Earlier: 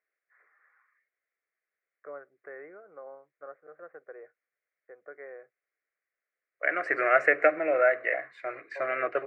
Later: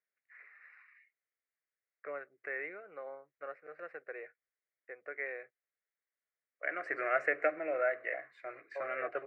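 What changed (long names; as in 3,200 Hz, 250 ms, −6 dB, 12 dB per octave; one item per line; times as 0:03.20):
first voice: remove low-pass filter 1,400 Hz 24 dB per octave
second voice −9.0 dB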